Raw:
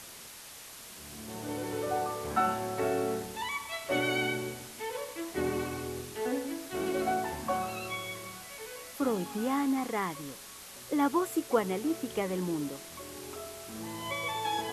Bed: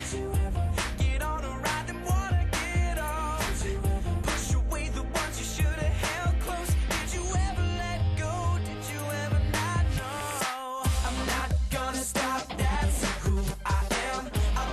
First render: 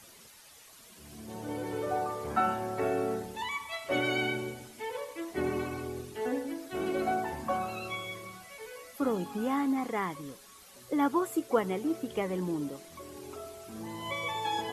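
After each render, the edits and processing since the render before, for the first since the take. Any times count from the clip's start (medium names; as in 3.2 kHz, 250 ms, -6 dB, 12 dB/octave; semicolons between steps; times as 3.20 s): noise reduction 10 dB, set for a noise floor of -48 dBFS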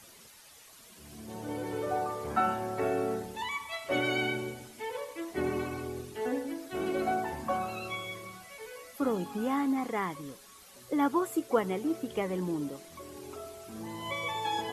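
no audible change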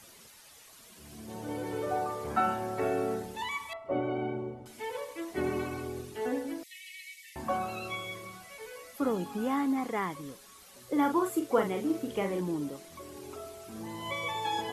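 3.73–4.66 s: Savitzky-Golay filter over 65 samples; 6.63–7.36 s: brick-wall FIR high-pass 1.8 kHz; 10.90–12.41 s: doubling 41 ms -6 dB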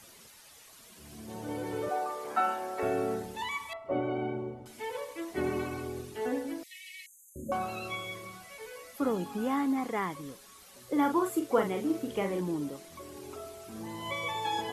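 1.89–2.83 s: high-pass 400 Hz; 7.06–7.52 s: brick-wall FIR band-stop 610–6200 Hz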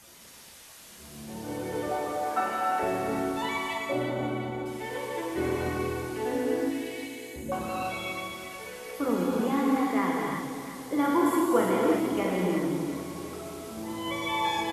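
feedback delay 356 ms, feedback 57%, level -11 dB; gated-style reverb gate 380 ms flat, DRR -3 dB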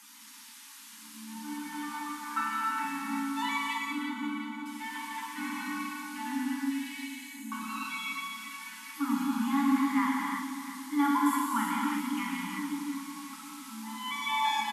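FFT band-reject 310–810 Hz; steep high-pass 210 Hz 72 dB/octave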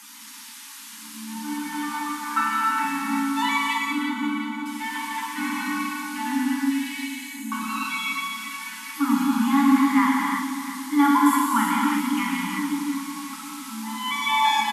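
trim +8.5 dB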